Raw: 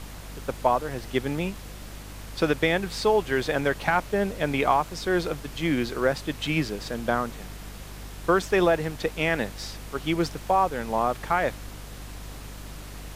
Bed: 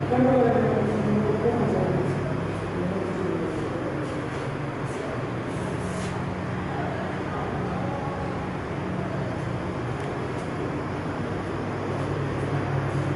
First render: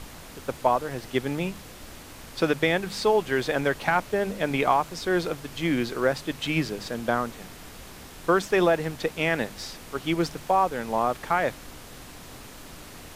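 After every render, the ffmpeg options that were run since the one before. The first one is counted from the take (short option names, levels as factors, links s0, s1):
-af "bandreject=f=50:t=h:w=4,bandreject=f=100:t=h:w=4,bandreject=f=150:t=h:w=4,bandreject=f=200:t=h:w=4"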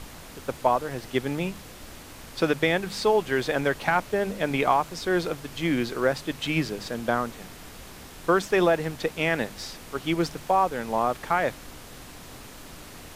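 -af anull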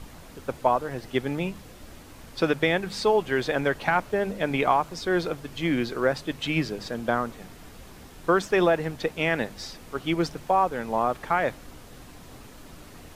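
-af "afftdn=nr=6:nf=-44"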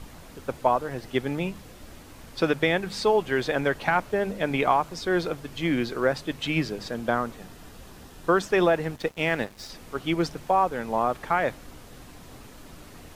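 -filter_complex "[0:a]asettb=1/sr,asplit=3[s0][s1][s2];[s0]atrim=end=7.364[s3];[s1]atrim=start=7.36:end=8.46,asetpts=PTS-STARTPTS,afade=t=in:d=0.004:c=qsin,afade=t=out:st=1.096:d=0.004:c=qsin,bandreject=f=2200:w=12[s4];[s2]atrim=start=8.456[s5];[s3][s4]acrossfade=d=0.004:c1=hsin:c2=qsin[s6];[s6][s5]acrossfade=d=0.004:c1=qsin:c2=hsin,asettb=1/sr,asplit=3[s7][s8][s9];[s7]atrim=end=8.964[s10];[s8]atrim=start=8.96:end=9.7,asetpts=PTS-STARTPTS,afade=t=in:d=0.004:c=qsin,afade=t=out:st=0.736:d=0.004:c=qsin,aeval=exprs='sgn(val(0))*max(abs(val(0))-0.00596,0)':c=same[s11];[s9]atrim=start=9.696[s12];[s10][s11]acrossfade=d=0.004:c1=hsin:c2=qsin[s13];[s13][s12]acrossfade=d=0.004:c1=qsin:c2=hsin"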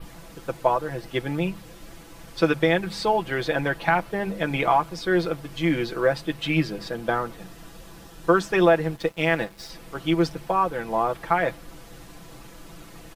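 -af "adynamicequalizer=threshold=0.00158:dfrequency=6700:dqfactor=2.1:tfrequency=6700:tqfactor=2.1:attack=5:release=100:ratio=0.375:range=2.5:mode=cutabove:tftype=bell,aecho=1:1:6:0.65"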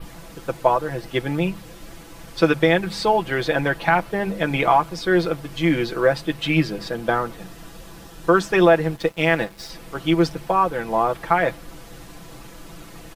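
-af "volume=1.5,alimiter=limit=0.708:level=0:latency=1"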